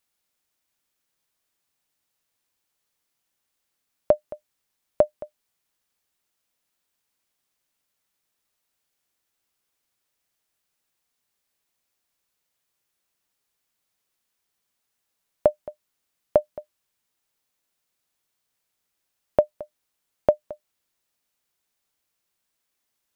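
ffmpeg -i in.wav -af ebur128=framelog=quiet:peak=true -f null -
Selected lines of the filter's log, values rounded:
Integrated loudness:
  I:         -25.9 LUFS
  Threshold: -37.8 LUFS
Loudness range:
  LRA:         3.0 LU
  Threshold: -52.5 LUFS
  LRA low:   -34.3 LUFS
  LRA high:  -31.3 LUFS
True peak:
  Peak:       -4.8 dBFS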